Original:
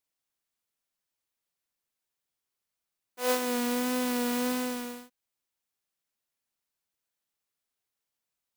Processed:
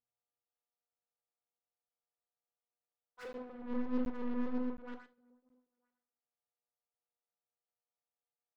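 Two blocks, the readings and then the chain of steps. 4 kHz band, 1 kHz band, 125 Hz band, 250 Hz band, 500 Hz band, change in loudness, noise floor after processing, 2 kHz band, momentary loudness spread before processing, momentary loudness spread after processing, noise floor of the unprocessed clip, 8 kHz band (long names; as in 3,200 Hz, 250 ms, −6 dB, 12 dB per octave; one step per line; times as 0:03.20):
below −25 dB, −15.0 dB, can't be measured, −6.5 dB, −12.0 dB, −10.0 dB, below −85 dBFS, −17.0 dB, 9 LU, 14 LU, below −85 dBFS, below −35 dB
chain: treble cut that deepens with the level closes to 380 Hz, closed at −29.5 dBFS
parametric band 1,500 Hz +13.5 dB 1.5 octaves
single-tap delay 928 ms −18.5 dB
auto-filter low-pass saw up 8.3 Hz 380–4,500 Hz
hum with harmonics 120 Hz, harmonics 11, −67 dBFS −4 dB per octave
high-shelf EQ 3,300 Hz +11.5 dB
soft clipping −34.5 dBFS, distortion −7 dB
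rectangular room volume 890 cubic metres, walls furnished, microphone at 1.8 metres
regular buffer underruns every 0.72 s, samples 512, zero, from 0:00.45
expander for the loud parts 2.5 to 1, over −50 dBFS
level −1.5 dB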